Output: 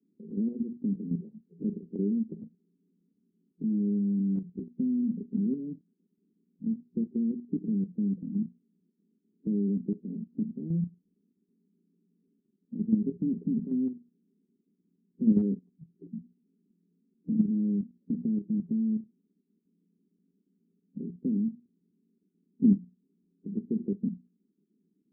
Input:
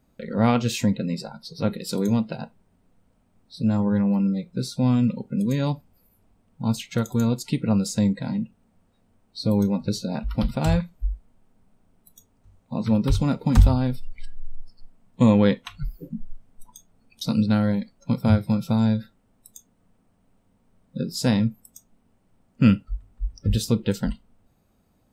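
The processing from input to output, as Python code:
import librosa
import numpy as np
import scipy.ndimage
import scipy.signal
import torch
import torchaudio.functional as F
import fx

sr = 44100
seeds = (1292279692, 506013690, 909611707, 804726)

y = scipy.signal.sosfilt(scipy.signal.cheby1(4, 1.0, [170.0, 410.0], 'bandpass', fs=sr, output='sos'), x)
y = fx.hum_notches(y, sr, base_hz=60, count=4)
y = fx.level_steps(y, sr, step_db=9)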